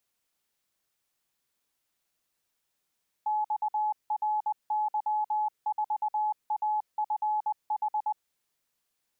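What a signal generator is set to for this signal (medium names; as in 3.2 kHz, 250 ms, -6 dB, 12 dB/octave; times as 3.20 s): Morse "XRY4AFH" 20 wpm 851 Hz -25 dBFS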